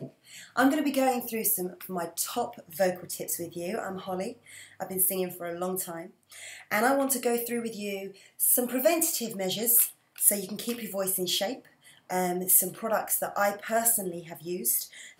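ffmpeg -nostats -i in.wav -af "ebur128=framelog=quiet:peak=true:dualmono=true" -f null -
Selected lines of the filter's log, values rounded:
Integrated loudness:
  I:         -24.2 LUFS
  Threshold: -34.7 LUFS
Loudness range:
  LRA:         6.5 LU
  Threshold: -44.7 LUFS
  LRA low:   -28.7 LUFS
  LRA high:  -22.3 LUFS
True peak:
  Peak:       -5.5 dBFS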